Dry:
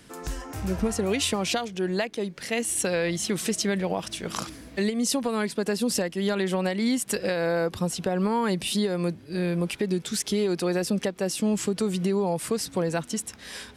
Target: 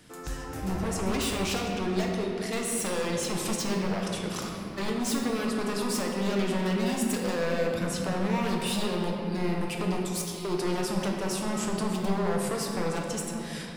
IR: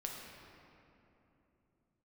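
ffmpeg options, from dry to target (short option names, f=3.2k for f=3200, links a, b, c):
-filter_complex "[0:a]asettb=1/sr,asplit=3[a][b][c];[a]atrim=end=9.974[d];[b]atrim=start=9.97:end=10.45,asetpts=PTS-STARTPTS,afade=t=in:d=0.004:c=qsin,afade=t=out:st=0.476:d=0.004:c=qsin,aderivative[e];[c]atrim=start=10.446[f];[d][e]acrossfade=d=0.004:c1=hsin:c2=qsin[g];[g][f]acrossfade=d=0.004:c1=qsin:c2=hsin,aeval=exprs='0.0708*(abs(mod(val(0)/0.0708+3,4)-2)-1)':c=same[h];[1:a]atrim=start_sample=2205[i];[h][i]afir=irnorm=-1:irlink=0"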